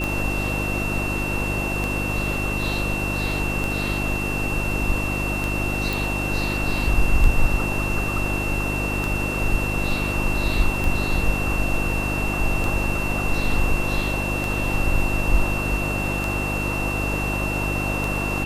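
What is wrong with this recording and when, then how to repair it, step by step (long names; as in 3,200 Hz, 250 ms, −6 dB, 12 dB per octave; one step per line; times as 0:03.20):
mains hum 50 Hz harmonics 7 −27 dBFS
scratch tick 33 1/3 rpm
whistle 2,700 Hz −27 dBFS
0:05.93: click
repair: click removal
hum removal 50 Hz, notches 7
notch filter 2,700 Hz, Q 30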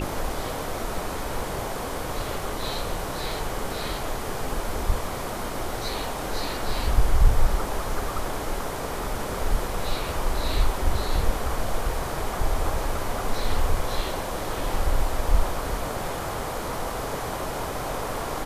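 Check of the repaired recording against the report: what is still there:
none of them is left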